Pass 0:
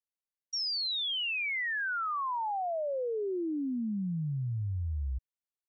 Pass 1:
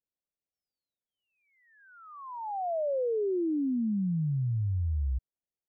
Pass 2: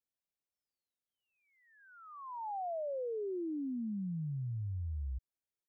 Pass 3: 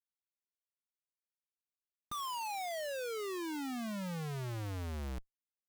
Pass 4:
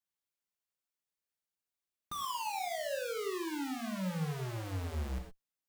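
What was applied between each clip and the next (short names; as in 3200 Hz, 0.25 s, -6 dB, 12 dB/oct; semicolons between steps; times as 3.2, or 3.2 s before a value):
inverse Chebyshev low-pass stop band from 3200 Hz, stop band 70 dB; gain +4 dB
compressor, threshold -33 dBFS, peak gain reduction 5.5 dB; gain -3.5 dB
added harmonics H 3 -20 dB, 7 -28 dB, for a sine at -34.5 dBFS; Schmitt trigger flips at -54 dBFS; gain +2 dB
non-linear reverb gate 0.14 s flat, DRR 2.5 dB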